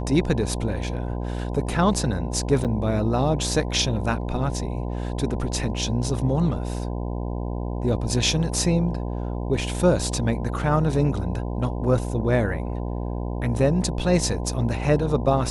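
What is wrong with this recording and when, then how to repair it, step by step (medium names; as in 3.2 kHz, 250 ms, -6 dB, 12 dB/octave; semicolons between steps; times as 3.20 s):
buzz 60 Hz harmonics 17 -28 dBFS
2.64–2.65 s: dropout 7.7 ms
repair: de-hum 60 Hz, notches 17; interpolate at 2.64 s, 7.7 ms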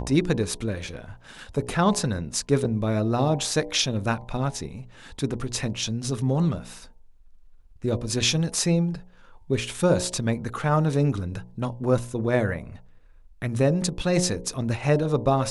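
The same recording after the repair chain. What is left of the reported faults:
nothing left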